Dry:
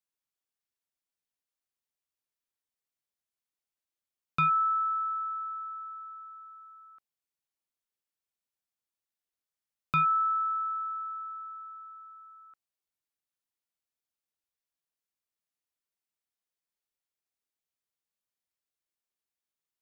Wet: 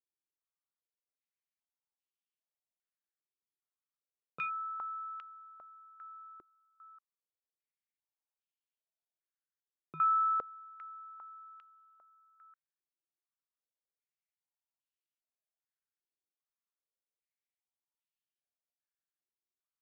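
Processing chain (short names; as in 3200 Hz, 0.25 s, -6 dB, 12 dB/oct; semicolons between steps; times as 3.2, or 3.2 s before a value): stepped band-pass 2.5 Hz 360–2900 Hz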